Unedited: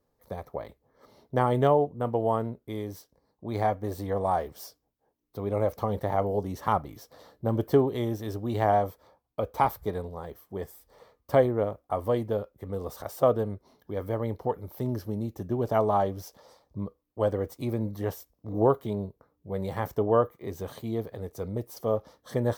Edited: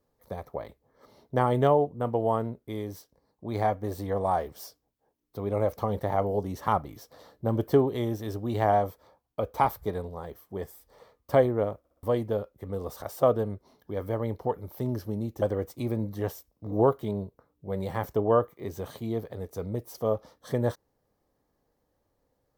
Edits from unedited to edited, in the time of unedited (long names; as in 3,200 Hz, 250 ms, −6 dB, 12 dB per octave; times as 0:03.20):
0:11.79: stutter in place 0.06 s, 4 plays
0:15.42–0:17.24: remove